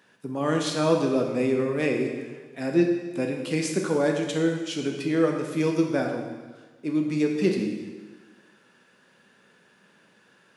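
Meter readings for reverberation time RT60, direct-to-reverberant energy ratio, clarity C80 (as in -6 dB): 1.4 s, 2.0 dB, 6.0 dB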